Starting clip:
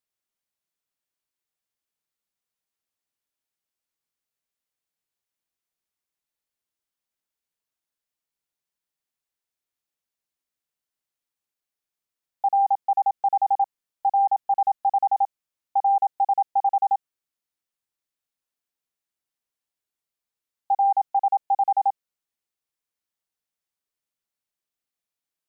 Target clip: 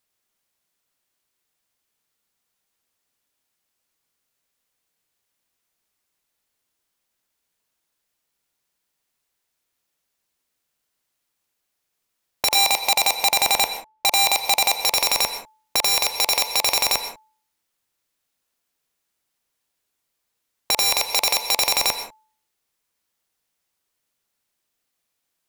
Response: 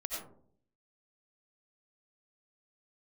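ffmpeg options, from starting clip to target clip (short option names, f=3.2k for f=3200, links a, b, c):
-filter_complex "[0:a]asettb=1/sr,asplit=3[a][b][c];[a]atrim=end=12.554[d];[b]atrim=start=12.55:end=14.73,asetpts=PTS-STARTPTS,afade=t=in:d=0.004:c=qsin,afade=t=out:st=2.176:d=0.004:c=qsin,lowpass=f=1k:p=1[e];[c]atrim=start=14.726[f];[d][e]acrossfade=d=0.004:c1=hsin:c2=qsin[g];[g][f]acrossfade=d=0.004:c1=qsin:c2=hsin,bandreject=f=435:t=h:w=4,bandreject=f=870:t=h:w=4,bandreject=f=1.305k:t=h:w=4,acontrast=83,aeval=exprs='(mod(5.96*val(0)+1,2)-1)/5.96':c=same,asplit=2[h][i];[1:a]atrim=start_sample=2205,atrim=end_sample=6615,asetrate=32634,aresample=44100[j];[i][j]afir=irnorm=-1:irlink=0,volume=-8.5dB[k];[h][k]amix=inputs=2:normalize=0,volume=1.5dB"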